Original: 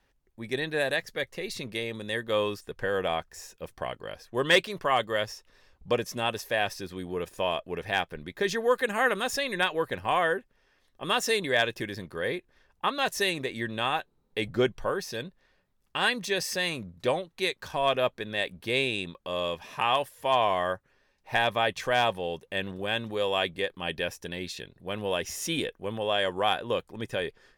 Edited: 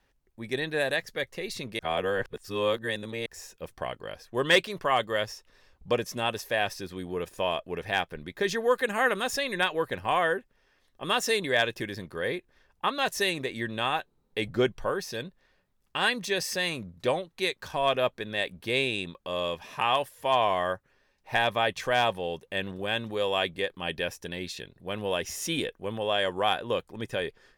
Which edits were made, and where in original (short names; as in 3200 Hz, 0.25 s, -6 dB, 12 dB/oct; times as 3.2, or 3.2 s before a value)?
1.79–3.26 reverse